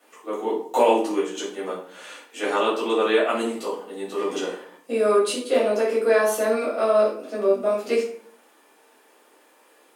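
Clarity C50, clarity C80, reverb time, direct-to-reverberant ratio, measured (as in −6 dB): 4.5 dB, 9.5 dB, 0.60 s, −8.5 dB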